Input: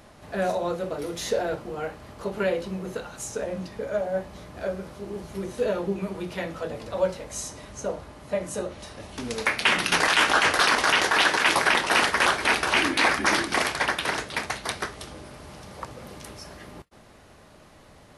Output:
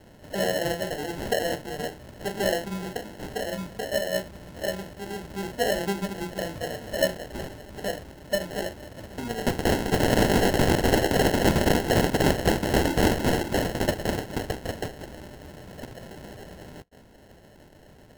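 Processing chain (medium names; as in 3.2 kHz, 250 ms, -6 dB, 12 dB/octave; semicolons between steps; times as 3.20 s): sample-and-hold 37×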